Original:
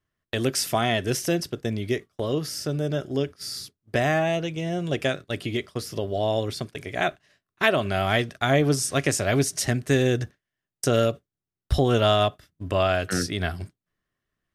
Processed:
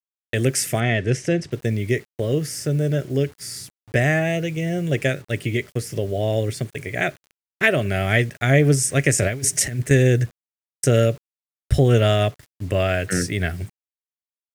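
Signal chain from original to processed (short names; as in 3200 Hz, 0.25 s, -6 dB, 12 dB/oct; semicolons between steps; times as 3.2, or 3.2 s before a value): graphic EQ 125/500/1000/2000/4000/8000 Hz +9/+6/-12/+11/-8/+8 dB; 9.18–9.91 negative-ratio compressor -21 dBFS, ratio -0.5; bit-crush 8-bit; 0.8–1.52 air absorption 100 m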